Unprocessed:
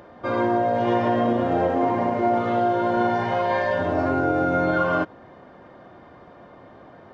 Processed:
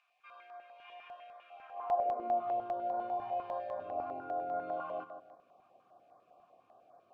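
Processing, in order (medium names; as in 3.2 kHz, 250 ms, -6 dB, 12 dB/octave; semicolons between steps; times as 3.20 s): bit crusher 9-bit; high-pass sweep 2.1 kHz -> 97 Hz, 1.60–2.54 s; vowel filter a; on a send: filtered feedback delay 155 ms, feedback 34%, low-pass 2 kHz, level -10 dB; on the sum: step-sequenced notch 10 Hz 500–2800 Hz; trim -6.5 dB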